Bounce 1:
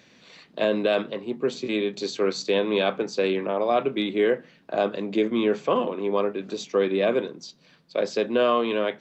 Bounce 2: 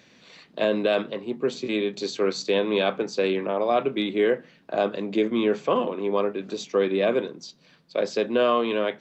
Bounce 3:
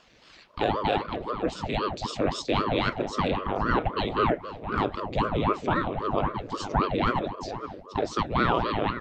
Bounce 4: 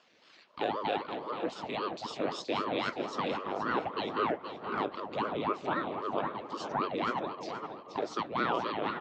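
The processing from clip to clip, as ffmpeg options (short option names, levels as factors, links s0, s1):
-af anull
-filter_complex "[0:a]asplit=2[s0][s1];[s1]adelay=471,lowpass=f=1300:p=1,volume=0.335,asplit=2[s2][s3];[s3]adelay=471,lowpass=f=1300:p=1,volume=0.38,asplit=2[s4][s5];[s5]adelay=471,lowpass=f=1300:p=1,volume=0.38,asplit=2[s6][s7];[s7]adelay=471,lowpass=f=1300:p=1,volume=0.38[s8];[s0][s2][s4][s6][s8]amix=inputs=5:normalize=0,aeval=exprs='val(0)*sin(2*PI*460*n/s+460*0.85/3.8*sin(2*PI*3.8*n/s))':c=same"
-filter_complex "[0:a]highpass=230,lowpass=6700,asplit=2[s0][s1];[s1]aecho=0:1:475|950|1425|1900:0.299|0.11|0.0409|0.0151[s2];[s0][s2]amix=inputs=2:normalize=0,volume=0.501"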